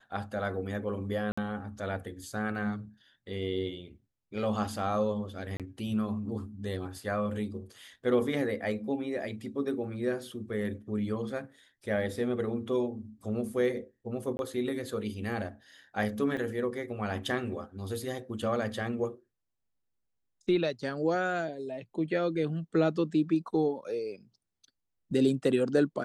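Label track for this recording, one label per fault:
1.320000	1.380000	drop-out 55 ms
5.570000	5.600000	drop-out 27 ms
14.370000	14.390000	drop-out 21 ms
16.370000	16.370000	drop-out 3.6 ms

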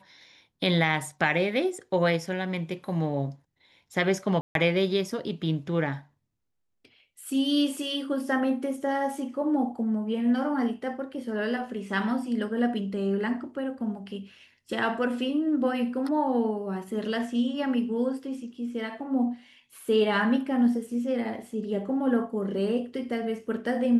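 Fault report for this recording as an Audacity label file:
4.410000	4.550000	drop-out 142 ms

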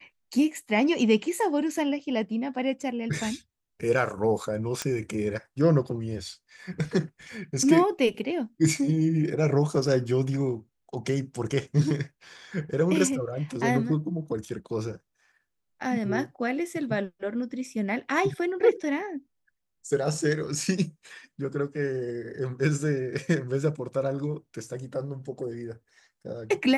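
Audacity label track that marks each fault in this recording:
4.820000	4.820000	click −13 dBFS

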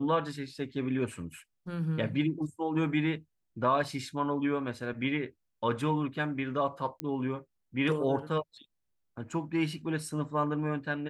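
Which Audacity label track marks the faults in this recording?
7.000000	7.000000	click −18 dBFS

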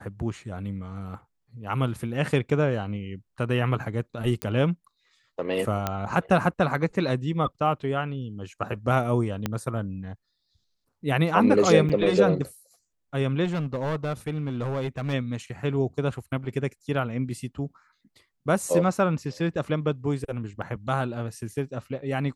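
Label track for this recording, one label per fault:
4.420000	4.420000	click −13 dBFS
5.870000	5.870000	click −11 dBFS
9.460000	9.460000	click −12 dBFS
11.890000	11.900000	drop-out 6.5 ms
13.440000	15.140000	clipping −24 dBFS
20.620000	20.620000	drop-out 3.2 ms

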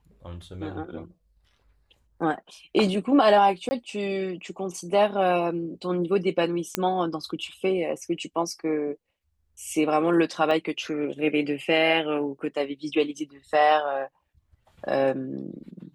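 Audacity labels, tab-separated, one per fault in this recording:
3.690000	3.710000	drop-out 20 ms
6.750000	6.750000	click −7 dBFS
10.510000	10.510000	drop-out 2.1 ms

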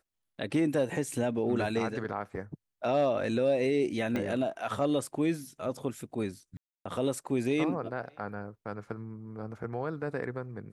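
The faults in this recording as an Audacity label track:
4.160000	4.160000	click −20 dBFS
6.570000	6.860000	drop-out 285 ms

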